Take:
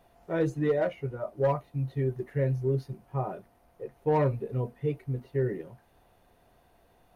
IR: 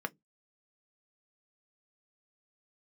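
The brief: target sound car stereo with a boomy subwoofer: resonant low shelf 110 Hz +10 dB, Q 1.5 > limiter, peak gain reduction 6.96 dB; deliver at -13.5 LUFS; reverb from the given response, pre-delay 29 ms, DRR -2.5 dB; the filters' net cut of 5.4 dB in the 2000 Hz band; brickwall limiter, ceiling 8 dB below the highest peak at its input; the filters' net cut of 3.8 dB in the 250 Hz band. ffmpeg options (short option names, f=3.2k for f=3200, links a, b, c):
-filter_complex "[0:a]equalizer=f=250:t=o:g=-5,equalizer=f=2k:t=o:g=-7,alimiter=level_in=1.5dB:limit=-24dB:level=0:latency=1,volume=-1.5dB,asplit=2[a][b];[1:a]atrim=start_sample=2205,adelay=29[c];[b][c]afir=irnorm=-1:irlink=0,volume=-1dB[d];[a][d]amix=inputs=2:normalize=0,lowshelf=f=110:t=q:w=1.5:g=10,volume=21.5dB,alimiter=limit=-3dB:level=0:latency=1"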